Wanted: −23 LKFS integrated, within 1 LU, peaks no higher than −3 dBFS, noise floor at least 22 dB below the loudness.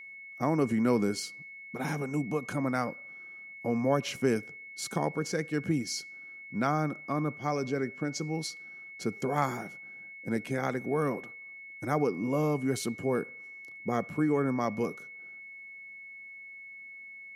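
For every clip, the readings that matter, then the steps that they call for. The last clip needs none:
interfering tone 2,200 Hz; level of the tone −44 dBFS; integrated loudness −31.5 LKFS; sample peak −13.0 dBFS; target loudness −23.0 LKFS
→ notch filter 2,200 Hz, Q 30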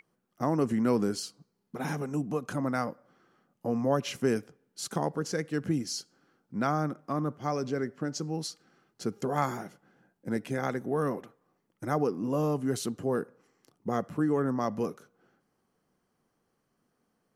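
interfering tone none found; integrated loudness −31.5 LKFS; sample peak −13.0 dBFS; target loudness −23.0 LKFS
→ level +8.5 dB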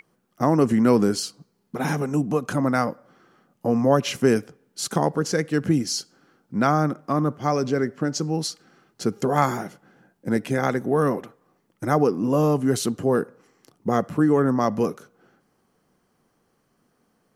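integrated loudness −23.0 LKFS; sample peak −4.5 dBFS; background noise floor −69 dBFS

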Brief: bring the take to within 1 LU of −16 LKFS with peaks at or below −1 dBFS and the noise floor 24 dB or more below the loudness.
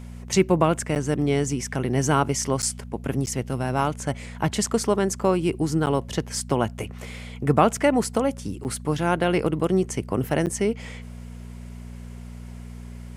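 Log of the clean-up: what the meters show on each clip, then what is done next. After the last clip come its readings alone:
number of dropouts 6; longest dropout 9.1 ms; mains hum 60 Hz; hum harmonics up to 240 Hz; level of the hum −36 dBFS; integrated loudness −24.0 LKFS; sample peak −4.5 dBFS; target loudness −16.0 LKFS
→ repair the gap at 0:00.95/0:02.62/0:03.26/0:05.86/0:08.64/0:10.46, 9.1 ms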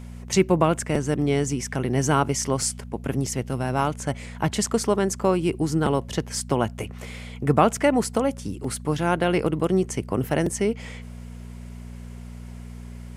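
number of dropouts 0; mains hum 60 Hz; hum harmonics up to 240 Hz; level of the hum −36 dBFS
→ hum removal 60 Hz, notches 4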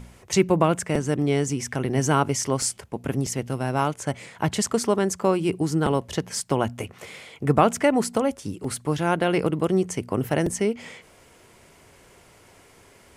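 mains hum none found; integrated loudness −24.0 LKFS; sample peak −4.5 dBFS; target loudness −16.0 LKFS
→ level +8 dB
brickwall limiter −1 dBFS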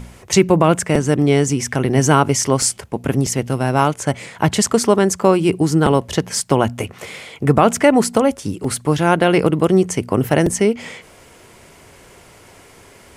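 integrated loudness −16.5 LKFS; sample peak −1.0 dBFS; background noise floor −46 dBFS

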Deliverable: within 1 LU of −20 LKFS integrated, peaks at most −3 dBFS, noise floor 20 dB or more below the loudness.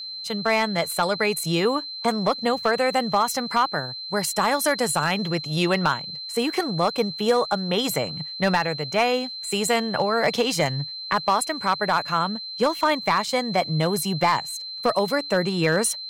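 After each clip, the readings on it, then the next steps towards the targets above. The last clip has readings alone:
share of clipped samples 0.3%; peaks flattened at −11.5 dBFS; interfering tone 4,100 Hz; level of the tone −32 dBFS; integrated loudness −23.0 LKFS; sample peak −11.5 dBFS; target loudness −20.0 LKFS
→ clipped peaks rebuilt −11.5 dBFS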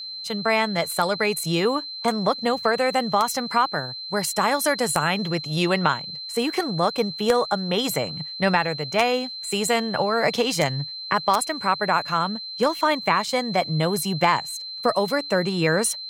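share of clipped samples 0.0%; interfering tone 4,100 Hz; level of the tone −32 dBFS
→ notch filter 4,100 Hz, Q 30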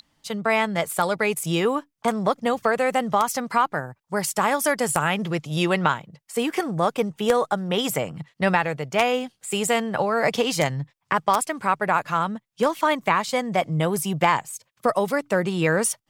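interfering tone none found; integrated loudness −23.5 LKFS; sample peak −2.0 dBFS; target loudness −20.0 LKFS
→ level +3.5 dB
brickwall limiter −3 dBFS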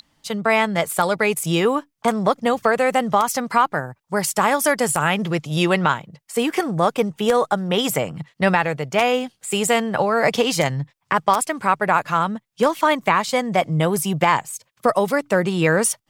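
integrated loudness −20.0 LKFS; sample peak −3.0 dBFS; background noise floor −70 dBFS

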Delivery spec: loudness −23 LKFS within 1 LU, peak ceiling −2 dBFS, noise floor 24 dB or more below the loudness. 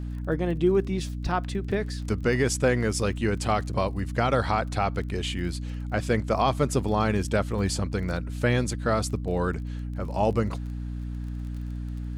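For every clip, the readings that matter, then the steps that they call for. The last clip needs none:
crackle rate 25 per second; mains hum 60 Hz; hum harmonics up to 300 Hz; level of the hum −30 dBFS; integrated loudness −27.0 LKFS; sample peak −11.5 dBFS; target loudness −23.0 LKFS
→ click removal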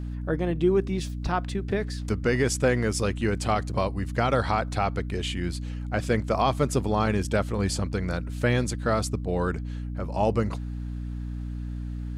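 crackle rate 0.082 per second; mains hum 60 Hz; hum harmonics up to 300 Hz; level of the hum −30 dBFS
→ hum removal 60 Hz, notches 5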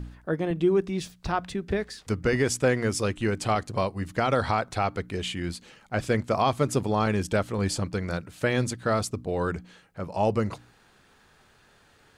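mains hum none found; integrated loudness −27.5 LKFS; sample peak −11.5 dBFS; target loudness −23.0 LKFS
→ level +4.5 dB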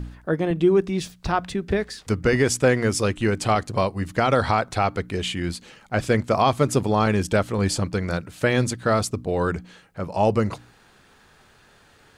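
integrated loudness −23.0 LKFS; sample peak −7.0 dBFS; background noise floor −55 dBFS

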